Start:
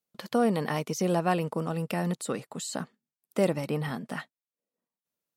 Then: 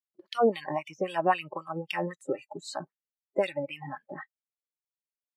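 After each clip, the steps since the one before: wah 3.8 Hz 390–3200 Hz, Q 2.1; spectral noise reduction 26 dB; gain +7.5 dB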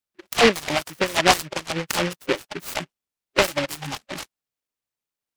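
noise-modulated delay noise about 1800 Hz, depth 0.22 ms; gain +7.5 dB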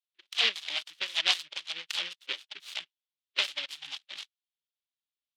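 band-pass 3400 Hz, Q 3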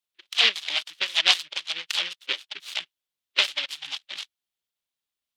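harmonic-percussive split percussive +3 dB; gain +4 dB

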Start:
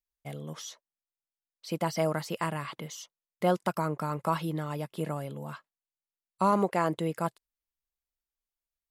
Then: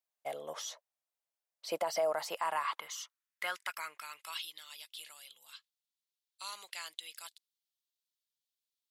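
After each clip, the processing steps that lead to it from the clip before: high-pass sweep 630 Hz -> 3600 Hz, 2.06–4.52; limiter -23.5 dBFS, peak gain reduction 10.5 dB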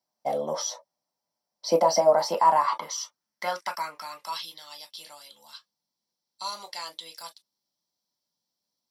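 reverb, pre-delay 3 ms, DRR 2.5 dB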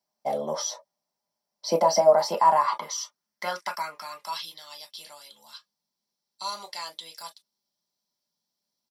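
comb 4.9 ms, depth 31%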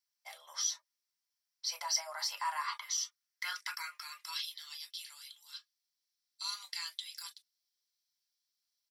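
HPF 1500 Hz 24 dB/oct; gain -2 dB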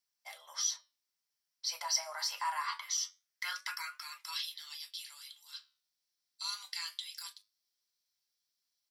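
flange 0.25 Hz, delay 7.3 ms, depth 8.2 ms, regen +80%; gain +5 dB

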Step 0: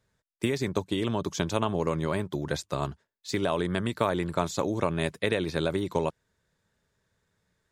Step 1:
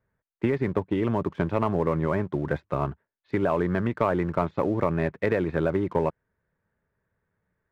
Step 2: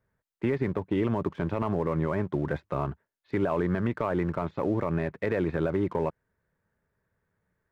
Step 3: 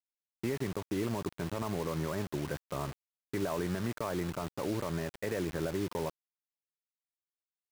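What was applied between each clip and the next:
LPF 2100 Hz 24 dB/oct; sample leveller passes 1
limiter -17.5 dBFS, peak gain reduction 7.5 dB
bit-crush 6-bit; gain -7 dB

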